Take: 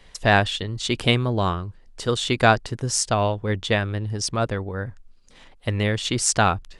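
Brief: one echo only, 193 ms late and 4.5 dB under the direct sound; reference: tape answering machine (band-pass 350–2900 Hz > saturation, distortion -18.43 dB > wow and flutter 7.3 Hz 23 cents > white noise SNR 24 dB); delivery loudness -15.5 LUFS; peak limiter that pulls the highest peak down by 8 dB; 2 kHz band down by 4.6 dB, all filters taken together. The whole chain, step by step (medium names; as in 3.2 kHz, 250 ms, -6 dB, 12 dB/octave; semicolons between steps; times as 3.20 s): peaking EQ 2 kHz -5.5 dB; peak limiter -12 dBFS; band-pass 350–2900 Hz; delay 193 ms -4.5 dB; saturation -14.5 dBFS; wow and flutter 7.3 Hz 23 cents; white noise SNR 24 dB; trim +14 dB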